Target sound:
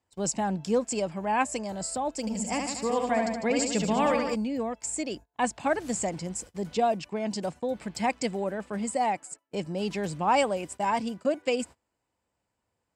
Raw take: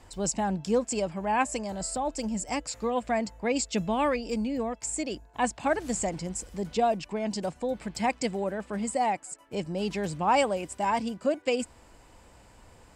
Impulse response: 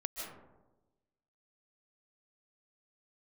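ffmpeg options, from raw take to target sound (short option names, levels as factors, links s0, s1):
-filter_complex "[0:a]agate=range=0.0562:threshold=0.00891:ratio=16:detection=peak,highpass=82,asettb=1/sr,asplit=3[s0][s1][s2];[s0]atrim=end=2.204[s3];[s1]atrim=start=2.2:end=4.35,asetpts=PTS-STARTPTS,afade=t=in:d=0.004:c=qsin,afade=t=out:st=2.146:d=0.004:c=qsin,aecho=1:1:70|150.5|243.1|349.5|472:0.631|0.398|0.251|0.158|0.1,atrim=end_sample=94815[s4];[s2]atrim=start=4.346[s5];[s3][s4]acrossfade=d=0.004:c1=hsin:c2=qsin[s6];[s6][s5]acrossfade=d=0.004:c1=qsin:c2=hsin"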